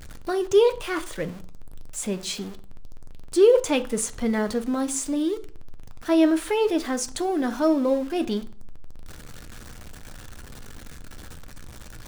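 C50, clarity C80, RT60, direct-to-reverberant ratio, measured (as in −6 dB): 17.5 dB, 22.5 dB, 0.45 s, 9.0 dB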